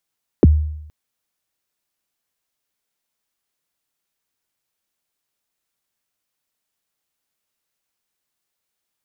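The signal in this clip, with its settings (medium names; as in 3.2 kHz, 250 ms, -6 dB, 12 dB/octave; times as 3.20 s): kick drum length 0.47 s, from 490 Hz, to 76 Hz, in 27 ms, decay 0.80 s, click off, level -4 dB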